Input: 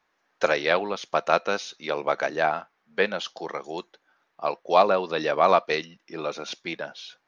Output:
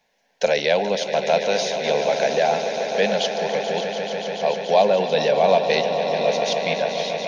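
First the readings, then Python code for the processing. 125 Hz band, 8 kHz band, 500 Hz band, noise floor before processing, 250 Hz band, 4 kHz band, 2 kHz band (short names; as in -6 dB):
+8.0 dB, n/a, +6.5 dB, -73 dBFS, +5.0 dB, +8.0 dB, +2.0 dB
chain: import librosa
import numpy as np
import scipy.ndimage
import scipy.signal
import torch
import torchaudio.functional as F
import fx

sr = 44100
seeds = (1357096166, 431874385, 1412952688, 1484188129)

p1 = fx.over_compress(x, sr, threshold_db=-27.0, ratio=-1.0)
p2 = x + (p1 * librosa.db_to_amplitude(-3.0))
p3 = fx.fixed_phaser(p2, sr, hz=330.0, stages=6)
p4 = fx.echo_swell(p3, sr, ms=144, loudest=5, wet_db=-11.5)
y = p4 * librosa.db_to_amplitude(3.0)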